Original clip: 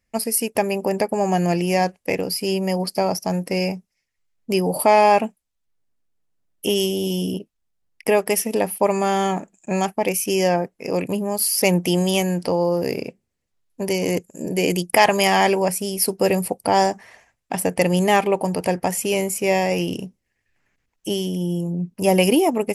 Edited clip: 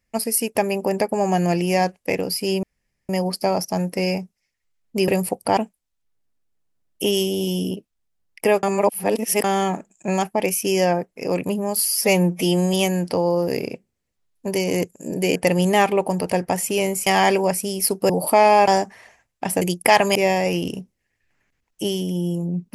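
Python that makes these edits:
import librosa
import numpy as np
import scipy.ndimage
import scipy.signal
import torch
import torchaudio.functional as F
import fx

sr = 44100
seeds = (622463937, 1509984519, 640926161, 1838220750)

y = fx.edit(x, sr, fx.insert_room_tone(at_s=2.63, length_s=0.46),
    fx.swap(start_s=4.62, length_s=0.58, other_s=16.27, other_length_s=0.49),
    fx.reverse_span(start_s=8.26, length_s=0.81),
    fx.stretch_span(start_s=11.51, length_s=0.57, factor=1.5),
    fx.swap(start_s=14.7, length_s=0.54, other_s=17.7, other_length_s=1.71), tone=tone)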